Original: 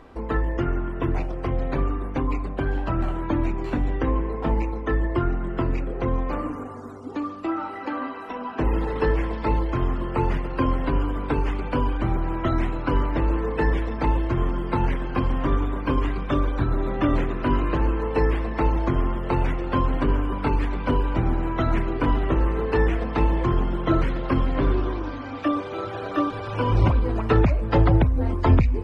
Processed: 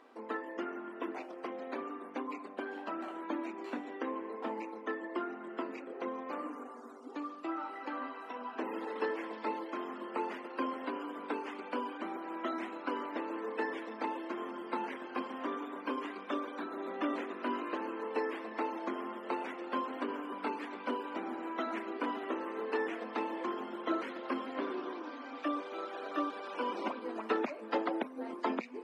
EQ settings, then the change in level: brick-wall FIR high-pass 200 Hz; bass shelf 270 Hz -9 dB; -8.5 dB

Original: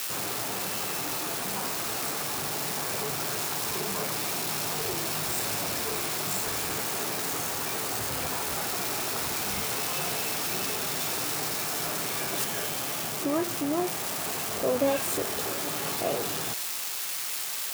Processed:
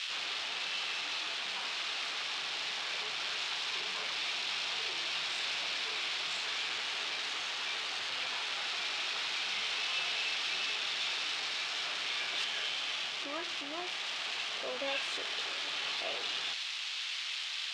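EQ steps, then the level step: band-pass filter 3.3 kHz, Q 2; distance through air 130 m; +8.0 dB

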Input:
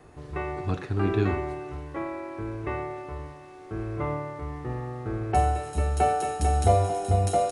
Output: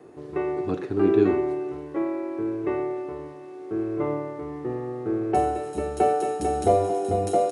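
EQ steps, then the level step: high-pass 130 Hz 12 dB/octave; peaking EQ 360 Hz +12.5 dB 1.4 oct; -3.5 dB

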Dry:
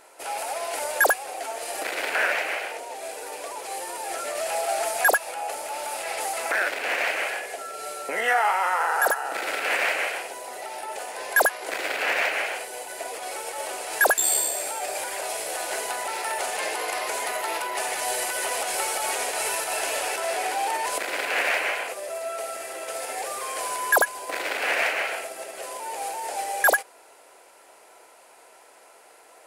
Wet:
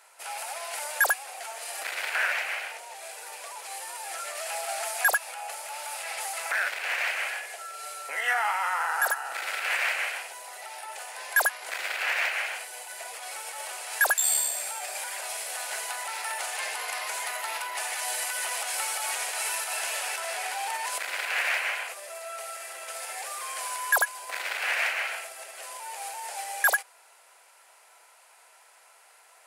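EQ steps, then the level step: high-pass 970 Hz 12 dB/octave; -2.0 dB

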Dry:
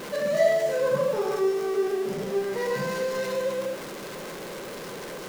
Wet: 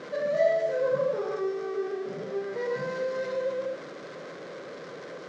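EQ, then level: cabinet simulation 170–6300 Hz, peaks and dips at 210 Hz -9 dB, 370 Hz -6 dB, 880 Hz -10 dB, 2.7 kHz -6 dB; treble shelf 2.9 kHz -11.5 dB; 0.0 dB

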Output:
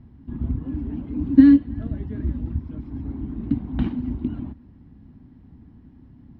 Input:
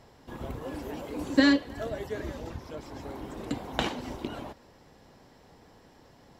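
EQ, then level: distance through air 370 m; peaking EQ 67 Hz +10.5 dB 1.7 oct; resonant low shelf 360 Hz +11.5 dB, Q 3; -6.5 dB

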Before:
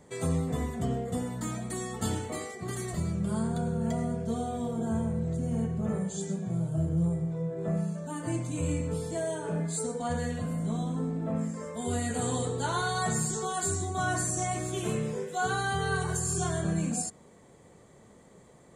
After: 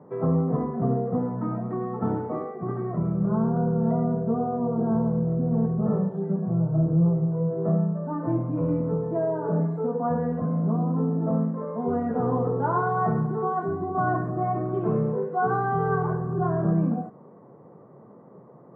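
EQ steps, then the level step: elliptic band-pass 130–1200 Hz, stop band 60 dB; +7.5 dB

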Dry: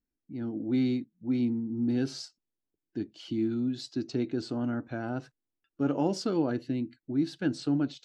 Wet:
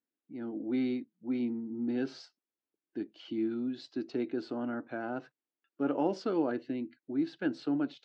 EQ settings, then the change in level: band-pass 290–2900 Hz; 0.0 dB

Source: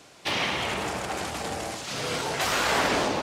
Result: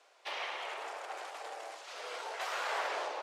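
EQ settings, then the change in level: Bessel high-pass 820 Hz, order 8; tilt EQ -3.5 dB/octave; -7.5 dB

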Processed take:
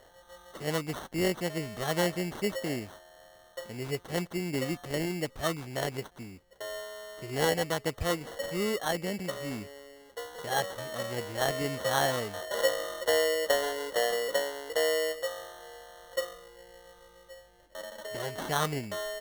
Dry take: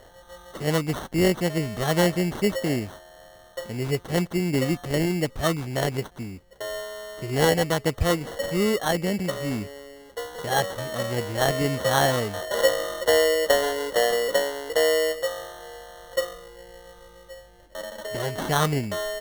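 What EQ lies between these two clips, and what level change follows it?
bass shelf 280 Hz -6 dB; -5.5 dB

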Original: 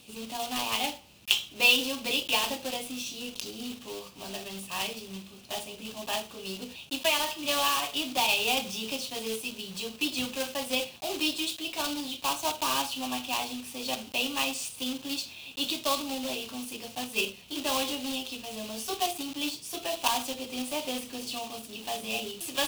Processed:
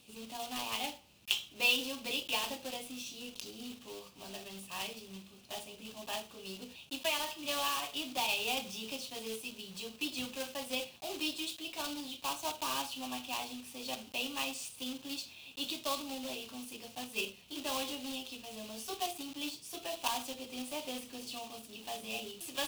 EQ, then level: flat; -7.5 dB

